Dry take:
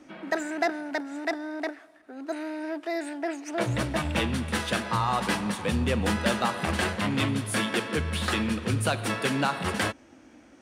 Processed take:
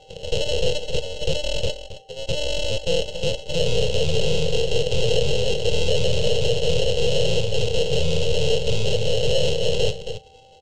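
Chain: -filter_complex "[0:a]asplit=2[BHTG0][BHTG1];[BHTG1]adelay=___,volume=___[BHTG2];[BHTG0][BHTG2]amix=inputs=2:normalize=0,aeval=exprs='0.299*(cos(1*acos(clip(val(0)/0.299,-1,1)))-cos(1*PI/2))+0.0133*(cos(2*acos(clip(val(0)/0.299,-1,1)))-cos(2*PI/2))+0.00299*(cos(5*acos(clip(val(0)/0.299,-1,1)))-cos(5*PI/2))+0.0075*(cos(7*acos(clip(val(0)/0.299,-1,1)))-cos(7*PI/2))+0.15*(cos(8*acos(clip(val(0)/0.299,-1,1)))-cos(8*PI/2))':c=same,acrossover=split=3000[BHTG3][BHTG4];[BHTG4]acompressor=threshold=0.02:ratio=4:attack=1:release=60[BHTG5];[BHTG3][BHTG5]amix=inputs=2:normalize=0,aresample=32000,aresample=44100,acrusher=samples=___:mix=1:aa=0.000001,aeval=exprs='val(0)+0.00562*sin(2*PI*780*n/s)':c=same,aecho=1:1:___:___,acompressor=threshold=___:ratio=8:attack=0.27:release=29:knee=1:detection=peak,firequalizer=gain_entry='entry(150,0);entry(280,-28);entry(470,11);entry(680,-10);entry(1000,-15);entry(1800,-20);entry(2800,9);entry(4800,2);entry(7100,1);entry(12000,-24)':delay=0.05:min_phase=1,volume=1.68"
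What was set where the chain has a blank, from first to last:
26, 0.422, 37, 269, 0.178, 0.141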